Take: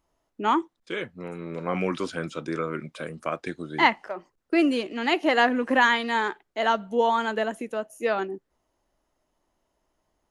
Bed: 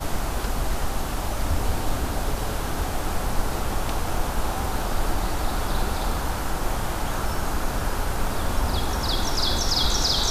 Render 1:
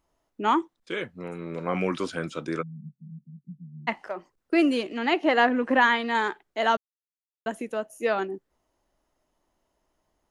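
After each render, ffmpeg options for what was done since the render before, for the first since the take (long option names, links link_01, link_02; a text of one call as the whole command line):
ffmpeg -i in.wav -filter_complex "[0:a]asplit=3[link_01][link_02][link_03];[link_01]afade=type=out:start_time=2.61:duration=0.02[link_04];[link_02]asuperpass=centerf=170:order=8:qfactor=2.3,afade=type=in:start_time=2.61:duration=0.02,afade=type=out:start_time=3.87:duration=0.02[link_05];[link_03]afade=type=in:start_time=3.87:duration=0.02[link_06];[link_04][link_05][link_06]amix=inputs=3:normalize=0,asettb=1/sr,asplit=3[link_07][link_08][link_09];[link_07]atrim=end=4.984[link_10];[link_08]atrim=start=4.98:end=6.15,asetpts=PTS-STARTPTS,afade=type=in:duration=0.004:curve=qsin,afade=type=out:start_time=1.166:duration=0.004:curve=qsin,aemphasis=mode=reproduction:type=50fm[link_11];[link_09]atrim=start=6.146[link_12];[link_10][link_11]acrossfade=duration=0.004:curve1=hsin:curve2=qsin[link_13];[link_13][link_12]acrossfade=duration=0.004:curve1=qsin:curve2=hsin,asplit=3[link_14][link_15][link_16];[link_14]atrim=end=6.77,asetpts=PTS-STARTPTS,afade=type=out:start_time=6.766:duration=0.004:curve=hsin[link_17];[link_15]atrim=start=6.77:end=7.46,asetpts=PTS-STARTPTS,volume=0[link_18];[link_16]atrim=start=7.46,asetpts=PTS-STARTPTS,afade=type=in:duration=0.004:curve=hsin[link_19];[link_17][link_18][link_19]concat=n=3:v=0:a=1" out.wav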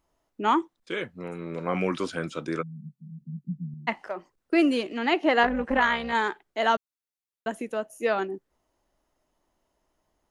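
ffmpeg -i in.wav -filter_complex "[0:a]asettb=1/sr,asplit=3[link_01][link_02][link_03];[link_01]atrim=end=3.214[link_04];[link_02]atrim=start=3.21:end=3.74,asetpts=PTS-STARTPTS,afade=type=in:duration=0.004:curve=qsin,afade=type=out:start_time=0.526:duration=0.004:curve=qsin,equalizer=frequency=230:width=0.4:gain=9.5[link_05];[link_03]atrim=start=3.736[link_06];[link_04][link_05]acrossfade=duration=0.004:curve1=hsin:curve2=qsin[link_07];[link_07][link_06]acrossfade=duration=0.004:curve1=qsin:curve2=hsin,asettb=1/sr,asplit=3[link_08][link_09][link_10];[link_08]atrim=end=5.434[link_11];[link_09]atrim=start=5.43:end=6.13,asetpts=PTS-STARTPTS,afade=type=in:duration=0.004:curve=qsin,afade=type=out:start_time=0.696:duration=0.004:curve=qsin,tremolo=f=300:d=0.621[link_12];[link_10]atrim=start=6.126[link_13];[link_11][link_12]acrossfade=duration=0.004:curve1=hsin:curve2=qsin[link_14];[link_14][link_13]acrossfade=duration=0.004:curve1=qsin:curve2=hsin" out.wav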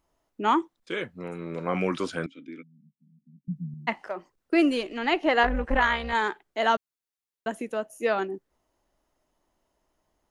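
ffmpeg -i in.wav -filter_complex "[0:a]asettb=1/sr,asplit=3[link_01][link_02][link_03];[link_01]atrim=end=2.264[link_04];[link_02]atrim=start=2.26:end=3.48,asetpts=PTS-STARTPTS,afade=type=in:duration=0.004:curve=qsin,afade=type=out:start_time=1.216:duration=0.004:curve=qsin,asplit=3[link_05][link_06][link_07];[link_05]bandpass=frequency=270:width_type=q:width=8,volume=0dB[link_08];[link_06]bandpass=frequency=2290:width_type=q:width=8,volume=-6dB[link_09];[link_07]bandpass=frequency=3010:width_type=q:width=8,volume=-9dB[link_10];[link_08][link_09][link_10]amix=inputs=3:normalize=0[link_11];[link_03]atrim=start=3.476[link_12];[link_04][link_11]acrossfade=duration=0.004:curve1=hsin:curve2=qsin[link_13];[link_13][link_12]acrossfade=duration=0.004:curve1=qsin:curve2=hsin,asplit=3[link_14][link_15][link_16];[link_14]afade=type=out:start_time=4.68:duration=0.02[link_17];[link_15]asubboost=boost=8:cutoff=59,afade=type=in:start_time=4.68:duration=0.02,afade=type=out:start_time=6.21:duration=0.02[link_18];[link_16]afade=type=in:start_time=6.21:duration=0.02[link_19];[link_17][link_18][link_19]amix=inputs=3:normalize=0" out.wav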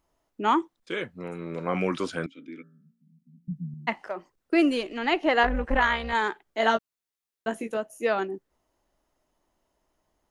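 ffmpeg -i in.wav -filter_complex "[0:a]asettb=1/sr,asplit=3[link_01][link_02][link_03];[link_01]atrim=end=2.344[link_04];[link_02]atrim=start=2.34:end=3.52,asetpts=PTS-STARTPTS,afade=type=in:duration=0.004:curve=qsin,afade=type=out:start_time=1.176:duration=0.004:curve=qsin,bandreject=frequency=57.46:width_type=h:width=4,bandreject=frequency=114.92:width_type=h:width=4,bandreject=frequency=172.38:width_type=h:width=4,bandreject=frequency=229.84:width_type=h:width=4,bandreject=frequency=287.3:width_type=h:width=4,bandreject=frequency=344.76:width_type=h:width=4,bandreject=frequency=402.22:width_type=h:width=4,bandreject=frequency=459.68:width_type=h:width=4,bandreject=frequency=517.14:width_type=h:width=4,bandreject=frequency=574.6:width_type=h:width=4,bandreject=frequency=632.06:width_type=h:width=4,bandreject=frequency=689.52:width_type=h:width=4,bandreject=frequency=746.98:width_type=h:width=4,bandreject=frequency=804.44:width_type=h:width=4,bandreject=frequency=861.9:width_type=h:width=4,bandreject=frequency=919.36:width_type=h:width=4,bandreject=frequency=976.82:width_type=h:width=4,bandreject=frequency=1034.28:width_type=h:width=4,bandreject=frequency=1091.74:width_type=h:width=4,bandreject=frequency=1149.2:width_type=h:width=4,bandreject=frequency=1206.66:width_type=h:width=4,bandreject=frequency=1264.12:width_type=h:width=4,bandreject=frequency=1321.58:width_type=h:width=4,bandreject=frequency=1379.04:width_type=h:width=4,bandreject=frequency=1436.5:width_type=h:width=4,bandreject=frequency=1493.96:width_type=h:width=4,bandreject=frequency=1551.42:width_type=h:width=4,bandreject=frequency=1608.88:width_type=h:width=4,bandreject=frequency=1666.34:width_type=h:width=4,bandreject=frequency=1723.8:width_type=h:width=4,bandreject=frequency=1781.26:width_type=h:width=4,bandreject=frequency=1838.72:width_type=h:width=4[link_05];[link_03]atrim=start=3.516[link_06];[link_04][link_05]acrossfade=duration=0.004:curve1=hsin:curve2=qsin[link_07];[link_07][link_06]acrossfade=duration=0.004:curve1=qsin:curve2=hsin,asettb=1/sr,asplit=3[link_08][link_09][link_10];[link_08]atrim=end=6.454[link_11];[link_09]atrim=start=6.45:end=7.77,asetpts=PTS-STARTPTS,afade=type=in:duration=0.004:curve=qsin,afade=type=out:start_time=1.316:duration=0.004:curve=qsin,asplit=2[link_12][link_13];[link_13]adelay=18,volume=-5dB[link_14];[link_12][link_14]amix=inputs=2:normalize=0,atrim=end_sample=58212[link_15];[link_10]atrim=start=7.766[link_16];[link_11][link_15]acrossfade=duration=0.004:curve1=hsin:curve2=qsin[link_17];[link_17][link_16]acrossfade=duration=0.004:curve1=qsin:curve2=hsin" out.wav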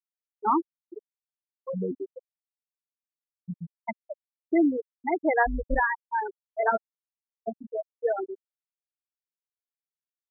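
ffmpeg -i in.wav -af "lowpass=frequency=2800:width=0.5412,lowpass=frequency=2800:width=1.3066,afftfilt=real='re*gte(hypot(re,im),0.282)':imag='im*gte(hypot(re,im),0.282)':win_size=1024:overlap=0.75" out.wav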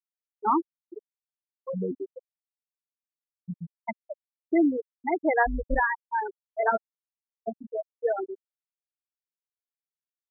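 ffmpeg -i in.wav -af anull out.wav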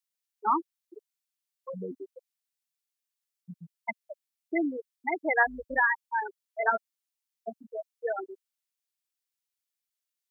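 ffmpeg -i in.wav -af "highpass=100,tiltshelf=frequency=1200:gain=-8.5" out.wav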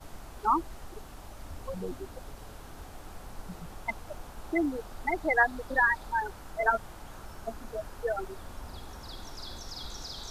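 ffmpeg -i in.wav -i bed.wav -filter_complex "[1:a]volume=-19dB[link_01];[0:a][link_01]amix=inputs=2:normalize=0" out.wav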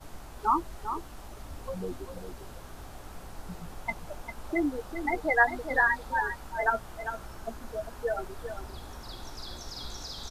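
ffmpeg -i in.wav -filter_complex "[0:a]asplit=2[link_01][link_02];[link_02]adelay=17,volume=-11dB[link_03];[link_01][link_03]amix=inputs=2:normalize=0,asplit=2[link_04][link_05];[link_05]aecho=0:1:399:0.355[link_06];[link_04][link_06]amix=inputs=2:normalize=0" out.wav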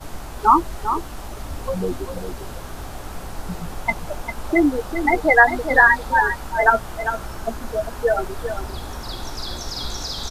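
ffmpeg -i in.wav -af "volume=11.5dB,alimiter=limit=-1dB:level=0:latency=1" out.wav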